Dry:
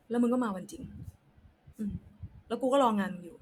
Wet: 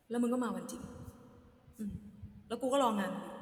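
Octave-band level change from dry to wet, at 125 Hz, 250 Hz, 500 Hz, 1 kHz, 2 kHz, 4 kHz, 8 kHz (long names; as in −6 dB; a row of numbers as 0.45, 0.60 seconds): −5.0, −5.0, −5.0, −4.5, −3.5, −1.5, +1.5 decibels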